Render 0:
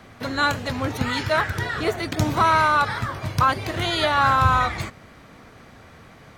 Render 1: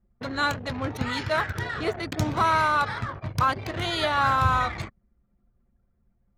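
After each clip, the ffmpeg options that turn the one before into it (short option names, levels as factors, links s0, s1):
-af "anlmdn=25.1,volume=0.631"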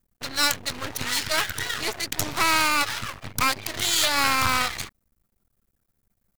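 -af "aeval=exprs='max(val(0),0)':c=same,crystalizer=i=9.5:c=0,volume=0.75"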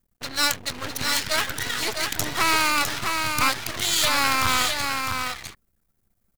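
-af "aecho=1:1:656:0.562"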